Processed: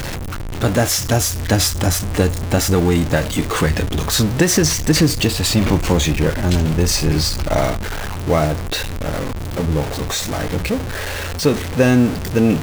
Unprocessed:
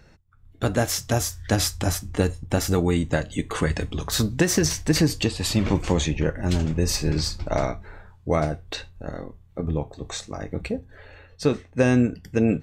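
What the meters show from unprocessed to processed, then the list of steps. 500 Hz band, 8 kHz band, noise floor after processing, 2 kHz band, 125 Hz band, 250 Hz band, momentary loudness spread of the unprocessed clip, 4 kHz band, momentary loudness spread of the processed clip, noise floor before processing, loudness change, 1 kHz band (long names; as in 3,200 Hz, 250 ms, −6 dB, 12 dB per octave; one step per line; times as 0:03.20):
+6.0 dB, +8.0 dB, −25 dBFS, +7.5 dB, +7.0 dB, +6.0 dB, 12 LU, +8.0 dB, 9 LU, −53 dBFS, +6.5 dB, +7.5 dB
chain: converter with a step at zero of −23.5 dBFS
level +4 dB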